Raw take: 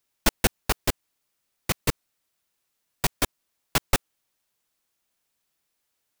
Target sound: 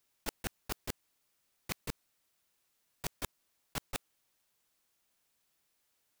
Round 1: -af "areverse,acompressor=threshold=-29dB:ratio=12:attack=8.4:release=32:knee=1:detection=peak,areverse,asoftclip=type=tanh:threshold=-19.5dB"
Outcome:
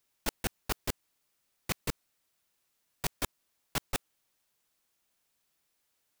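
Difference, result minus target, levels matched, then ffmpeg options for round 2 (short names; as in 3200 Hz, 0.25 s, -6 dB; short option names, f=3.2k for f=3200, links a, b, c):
compressor: peak gain reduction -8 dB
-af "areverse,acompressor=threshold=-37.5dB:ratio=12:attack=8.4:release=32:knee=1:detection=peak,areverse,asoftclip=type=tanh:threshold=-19.5dB"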